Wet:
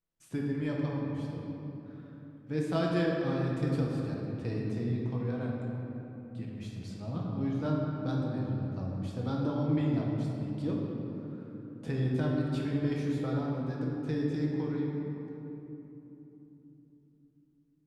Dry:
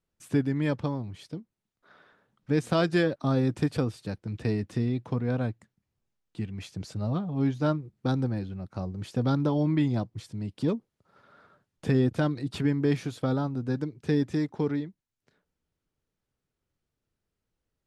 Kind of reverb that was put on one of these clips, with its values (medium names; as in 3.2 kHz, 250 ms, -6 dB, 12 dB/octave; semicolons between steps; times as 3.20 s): simulated room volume 190 m³, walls hard, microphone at 0.66 m; trim -10 dB